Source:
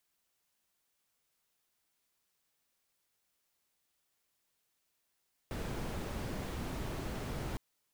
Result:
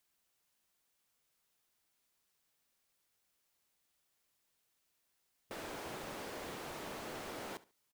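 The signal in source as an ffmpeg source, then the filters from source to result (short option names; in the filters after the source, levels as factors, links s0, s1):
-f lavfi -i "anoisesrc=c=brown:a=0.0556:d=2.06:r=44100:seed=1"
-af "afftfilt=real='re*lt(hypot(re,im),0.0398)':imag='im*lt(hypot(re,im),0.0398)':win_size=1024:overlap=0.75,aecho=1:1:70|140:0.106|0.0275"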